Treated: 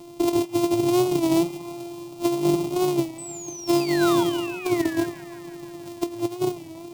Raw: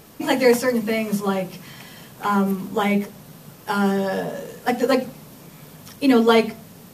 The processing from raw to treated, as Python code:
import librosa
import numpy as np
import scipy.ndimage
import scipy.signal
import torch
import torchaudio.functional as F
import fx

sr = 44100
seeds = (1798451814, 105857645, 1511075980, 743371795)

p1 = np.r_[np.sort(x[:len(x) // 128 * 128].reshape(-1, 128), axis=1).ravel(), x[len(x) // 128 * 128:]]
p2 = fx.peak_eq(p1, sr, hz=370.0, db=8.5, octaves=1.1)
p3 = fx.fixed_phaser(p2, sr, hz=320.0, stages=8)
p4 = fx.spec_paint(p3, sr, seeds[0], shape='fall', start_s=3.8, length_s=0.44, low_hz=880.0, high_hz=2700.0, level_db=-29.0)
p5 = fx.over_compress(p4, sr, threshold_db=-17.0, ratio=-0.5)
p6 = fx.spec_paint(p5, sr, seeds[1], shape='fall', start_s=3.18, length_s=1.88, low_hz=1600.0, high_hz=8400.0, level_db=-35.0)
p7 = p6 + fx.echo_wet_bandpass(p6, sr, ms=165, feedback_pct=73, hz=1200.0, wet_db=-13.0, dry=0)
p8 = fx.record_warp(p7, sr, rpm=33.33, depth_cents=100.0)
y = p8 * librosa.db_to_amplitude(-3.5)